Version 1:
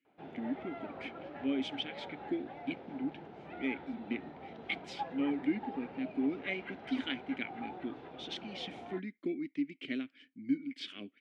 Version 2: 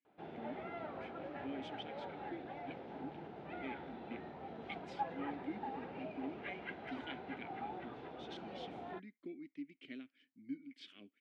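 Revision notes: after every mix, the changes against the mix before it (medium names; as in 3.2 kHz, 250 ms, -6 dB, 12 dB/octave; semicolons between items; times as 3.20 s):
speech -12.0 dB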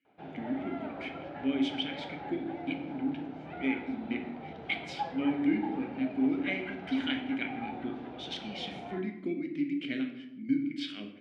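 speech +11.0 dB; reverb: on, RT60 0.85 s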